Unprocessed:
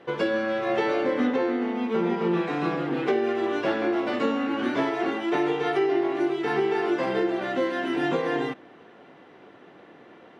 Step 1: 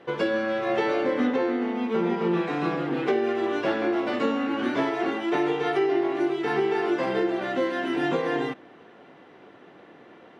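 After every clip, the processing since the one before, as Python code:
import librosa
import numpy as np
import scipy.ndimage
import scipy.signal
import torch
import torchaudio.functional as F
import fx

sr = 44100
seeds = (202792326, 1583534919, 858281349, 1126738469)

y = x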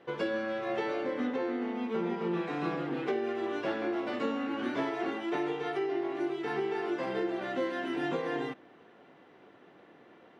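y = fx.rider(x, sr, range_db=10, speed_s=0.5)
y = F.gain(torch.from_numpy(y), -7.5).numpy()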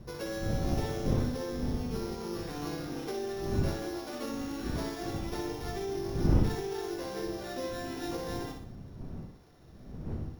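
y = np.r_[np.sort(x[:len(x) // 8 * 8].reshape(-1, 8), axis=1).ravel(), x[len(x) // 8 * 8:]]
y = fx.dmg_wind(y, sr, seeds[0], corner_hz=170.0, level_db=-30.0)
y = fx.echo_feedback(y, sr, ms=61, feedback_pct=43, wet_db=-5.0)
y = F.gain(torch.from_numpy(y), -6.5).numpy()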